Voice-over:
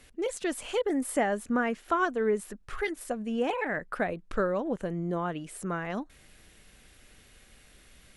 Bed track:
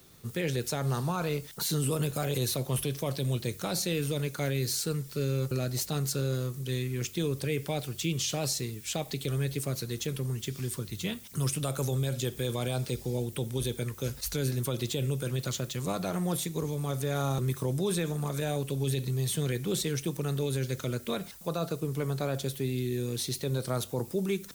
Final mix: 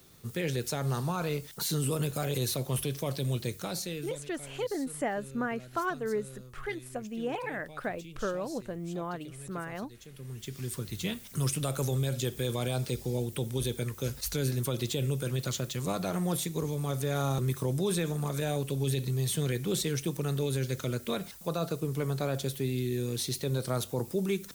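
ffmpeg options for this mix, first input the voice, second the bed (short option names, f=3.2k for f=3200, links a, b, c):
-filter_complex "[0:a]adelay=3850,volume=-5dB[a];[1:a]volume=16.5dB,afade=t=out:st=3.46:d=0.8:silence=0.149624,afade=t=in:st=10.1:d=0.79:silence=0.133352[b];[a][b]amix=inputs=2:normalize=0"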